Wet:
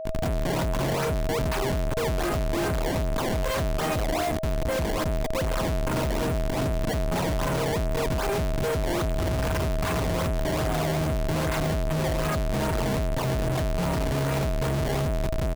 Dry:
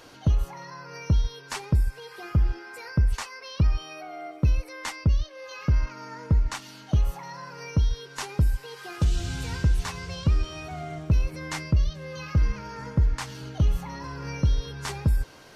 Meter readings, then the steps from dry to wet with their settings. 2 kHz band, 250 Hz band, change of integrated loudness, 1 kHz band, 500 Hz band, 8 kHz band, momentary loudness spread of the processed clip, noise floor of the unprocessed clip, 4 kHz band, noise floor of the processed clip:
+5.5 dB, +5.5 dB, +1.0 dB, +8.5 dB, +14.0 dB, +5.5 dB, 1 LU, -47 dBFS, +4.5 dB, -27 dBFS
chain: delay 356 ms -17.5 dB; Schmitt trigger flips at -40 dBFS; distance through air 170 m; decimation with a swept rate 20×, swing 160% 2.5 Hz; whistle 640 Hz -32 dBFS

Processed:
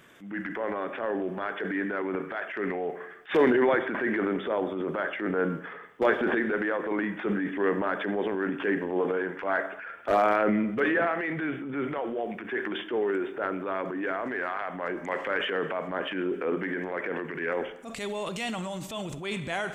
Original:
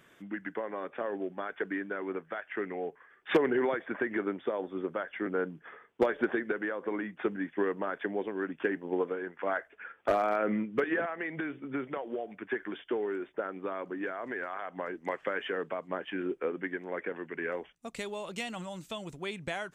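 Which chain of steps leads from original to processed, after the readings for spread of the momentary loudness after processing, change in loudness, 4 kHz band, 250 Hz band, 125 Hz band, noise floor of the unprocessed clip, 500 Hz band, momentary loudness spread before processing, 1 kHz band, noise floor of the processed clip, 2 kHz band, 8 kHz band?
9 LU, +5.0 dB, +6.5 dB, +5.5 dB, +7.5 dB, -62 dBFS, +4.5 dB, 9 LU, +6.0 dB, -43 dBFS, +6.0 dB, no reading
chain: Schroeder reverb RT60 0.8 s, combs from 28 ms, DRR 13.5 dB; transient shaper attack -8 dB, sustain +7 dB; trim +5.5 dB

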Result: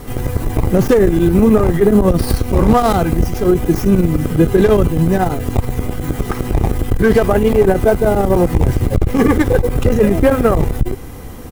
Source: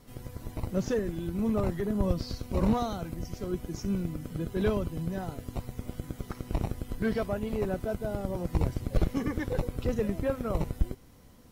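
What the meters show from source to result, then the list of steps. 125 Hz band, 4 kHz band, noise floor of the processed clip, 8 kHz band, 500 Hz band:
+17.0 dB, +14.5 dB, -29 dBFS, +17.5 dB, +19.0 dB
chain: tracing distortion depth 0.16 ms; peaking EQ 4.6 kHz -7 dB 1.3 oct; comb 2.5 ms, depth 32%; in parallel at +1 dB: compressor with a negative ratio -31 dBFS; on the sum: loudness maximiser +16.5 dB; transformer saturation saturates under 80 Hz

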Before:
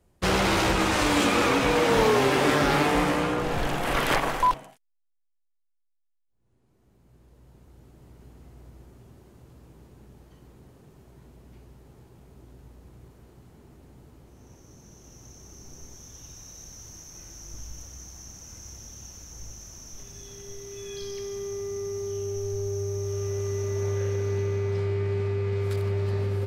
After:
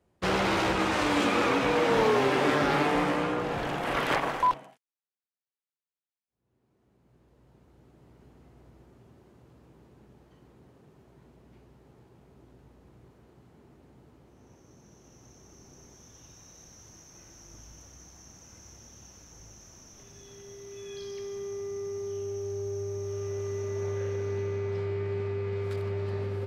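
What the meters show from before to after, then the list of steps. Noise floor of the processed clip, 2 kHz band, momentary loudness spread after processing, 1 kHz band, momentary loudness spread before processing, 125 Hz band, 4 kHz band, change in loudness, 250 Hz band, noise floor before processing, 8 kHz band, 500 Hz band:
under -85 dBFS, -3.0 dB, 13 LU, -2.5 dB, 21 LU, -6.5 dB, -5.0 dB, -3.5 dB, -3.0 dB, -72 dBFS, -8.5 dB, -2.5 dB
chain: high-pass 140 Hz 6 dB/octave; treble shelf 5.8 kHz -11.5 dB; trim -2 dB

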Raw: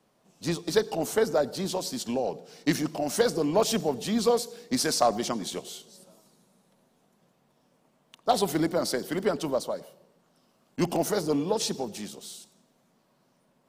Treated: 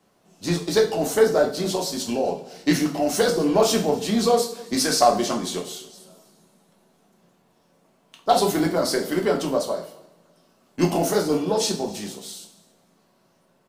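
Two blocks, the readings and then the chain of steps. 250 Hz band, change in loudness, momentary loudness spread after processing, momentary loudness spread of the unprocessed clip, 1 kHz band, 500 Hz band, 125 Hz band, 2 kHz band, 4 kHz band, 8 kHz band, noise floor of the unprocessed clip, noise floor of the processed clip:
+5.5 dB, +5.5 dB, 13 LU, 12 LU, +6.5 dB, +5.5 dB, +5.5 dB, +5.5 dB, +5.5 dB, +5.5 dB, -68 dBFS, -63 dBFS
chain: delay 270 ms -23 dB; two-slope reverb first 0.39 s, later 1.8 s, from -25 dB, DRR 0 dB; trim +2.5 dB

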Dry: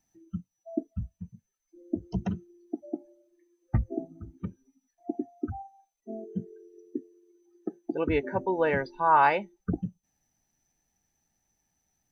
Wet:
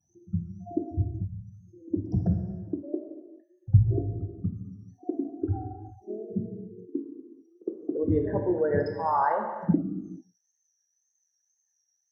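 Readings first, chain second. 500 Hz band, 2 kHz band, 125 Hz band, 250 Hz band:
+1.5 dB, -9.0 dB, +9.0 dB, +3.5 dB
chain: resonances exaggerated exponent 2; dynamic bell 890 Hz, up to -7 dB, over -41 dBFS, Q 0.95; wow and flutter 96 cents; high-pass sweep 96 Hz -> 2.1 kHz, 9.57–10.13 s; Butterworth band-stop 2.5 kHz, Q 1.2; on a send: reverse echo 61 ms -22 dB; on the sum: gated-style reverb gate 480 ms falling, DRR 2.5 dB; trim +1.5 dB

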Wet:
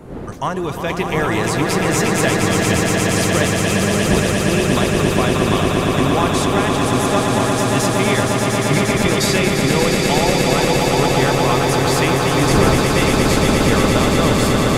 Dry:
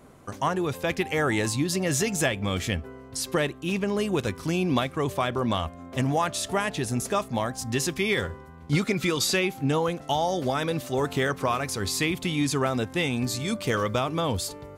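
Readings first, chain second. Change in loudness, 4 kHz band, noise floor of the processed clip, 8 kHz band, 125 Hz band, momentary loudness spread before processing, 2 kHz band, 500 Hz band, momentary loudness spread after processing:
+11.0 dB, +10.5 dB, -22 dBFS, +10.5 dB, +11.5 dB, 4 LU, +10.5 dB, +11.0 dB, 3 LU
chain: wind noise 360 Hz -34 dBFS; echo with a slow build-up 117 ms, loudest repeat 8, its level -6 dB; trim +4 dB

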